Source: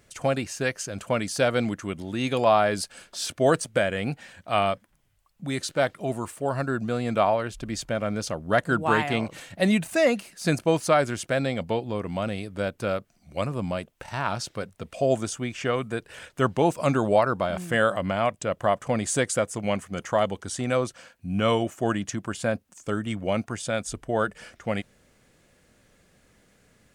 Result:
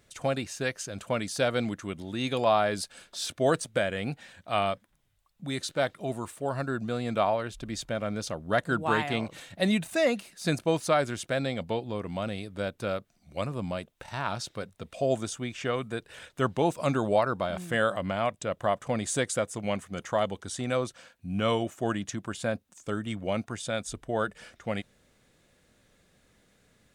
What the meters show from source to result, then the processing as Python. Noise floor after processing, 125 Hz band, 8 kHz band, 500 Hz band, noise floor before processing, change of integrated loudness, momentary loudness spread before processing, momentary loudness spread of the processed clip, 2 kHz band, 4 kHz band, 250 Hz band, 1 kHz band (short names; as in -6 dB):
-68 dBFS, -4.0 dB, -4.0 dB, -4.0 dB, -64 dBFS, -4.0 dB, 10 LU, 10 LU, -4.0 dB, -2.0 dB, -4.0 dB, -4.0 dB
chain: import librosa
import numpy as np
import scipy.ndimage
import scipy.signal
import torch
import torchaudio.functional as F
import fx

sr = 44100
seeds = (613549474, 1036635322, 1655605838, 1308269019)

y = fx.peak_eq(x, sr, hz=3700.0, db=6.5, octaves=0.2)
y = y * librosa.db_to_amplitude(-4.0)